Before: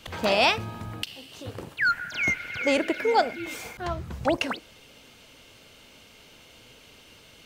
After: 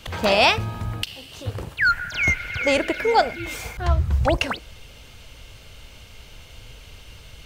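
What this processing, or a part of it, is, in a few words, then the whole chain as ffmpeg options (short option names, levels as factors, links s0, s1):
low shelf boost with a cut just above: -af "lowshelf=f=100:g=7.5,equalizer=f=280:t=o:w=0.77:g=-3,asubboost=boost=4:cutoff=110,volume=1.68"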